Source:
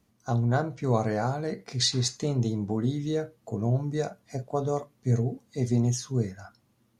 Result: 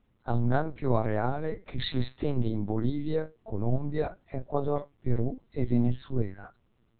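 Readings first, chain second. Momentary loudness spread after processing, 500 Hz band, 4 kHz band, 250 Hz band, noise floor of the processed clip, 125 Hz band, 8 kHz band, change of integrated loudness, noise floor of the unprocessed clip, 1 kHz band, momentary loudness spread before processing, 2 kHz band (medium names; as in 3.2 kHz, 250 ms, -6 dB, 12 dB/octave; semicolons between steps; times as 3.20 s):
7 LU, -1.0 dB, -9.5 dB, -1.0 dB, -69 dBFS, -3.5 dB, under -40 dB, -2.5 dB, -68 dBFS, -1.0 dB, 7 LU, -1.5 dB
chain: LPC vocoder at 8 kHz pitch kept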